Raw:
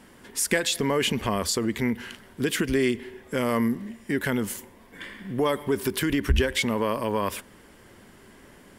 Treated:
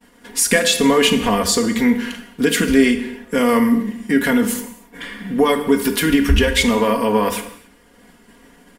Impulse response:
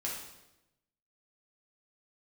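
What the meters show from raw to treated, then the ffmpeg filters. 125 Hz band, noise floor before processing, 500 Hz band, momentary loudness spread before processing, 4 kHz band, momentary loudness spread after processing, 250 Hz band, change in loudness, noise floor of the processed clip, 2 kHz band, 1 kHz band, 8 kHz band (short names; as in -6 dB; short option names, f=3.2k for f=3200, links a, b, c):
+4.5 dB, -52 dBFS, +8.5 dB, 10 LU, +9.5 dB, 12 LU, +11.0 dB, +9.5 dB, -51 dBFS, +9.0 dB, +9.5 dB, +9.0 dB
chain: -filter_complex "[0:a]aecho=1:1:4.2:0.8,agate=range=-33dB:threshold=-42dB:ratio=3:detection=peak,bandreject=f=48.88:t=h:w=4,bandreject=f=97.76:t=h:w=4,bandreject=f=146.64:t=h:w=4,bandreject=f=195.52:t=h:w=4,asplit=2[a][b];[1:a]atrim=start_sample=2205,afade=t=out:st=0.36:d=0.01,atrim=end_sample=16317[c];[b][c]afir=irnorm=-1:irlink=0,volume=-5dB[d];[a][d]amix=inputs=2:normalize=0,volume=3.5dB"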